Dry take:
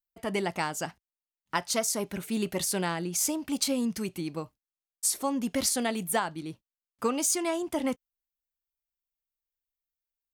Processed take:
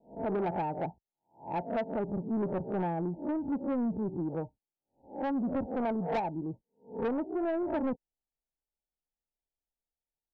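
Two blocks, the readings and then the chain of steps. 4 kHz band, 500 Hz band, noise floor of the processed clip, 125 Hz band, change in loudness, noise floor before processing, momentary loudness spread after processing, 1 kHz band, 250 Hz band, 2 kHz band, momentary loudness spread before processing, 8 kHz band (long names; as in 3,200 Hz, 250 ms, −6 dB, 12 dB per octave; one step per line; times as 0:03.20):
below −20 dB, −0.5 dB, below −85 dBFS, +1.0 dB, −4.0 dB, below −85 dBFS, 8 LU, −1.5 dB, −0.5 dB, −10.5 dB, 10 LU, below −40 dB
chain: peak hold with a rise ahead of every peak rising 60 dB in 0.34 s
Chebyshev low-pass filter 930 Hz, order 10
soft clipping −29.5 dBFS, distortion −11 dB
level +3 dB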